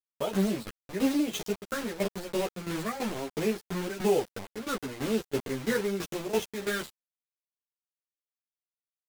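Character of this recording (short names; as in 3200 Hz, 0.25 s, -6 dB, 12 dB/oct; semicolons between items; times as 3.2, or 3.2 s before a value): phasing stages 8, 1 Hz, lowest notch 770–1700 Hz; a quantiser's noise floor 6-bit, dither none; tremolo saw down 3 Hz, depth 80%; a shimmering, thickened sound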